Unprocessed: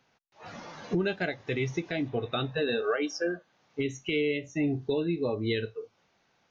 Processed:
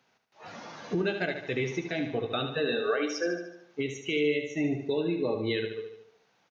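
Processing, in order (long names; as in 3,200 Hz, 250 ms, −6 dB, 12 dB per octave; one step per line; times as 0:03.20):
high-pass filter 160 Hz 6 dB per octave
on a send: repeating echo 74 ms, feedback 52%, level −7.5 dB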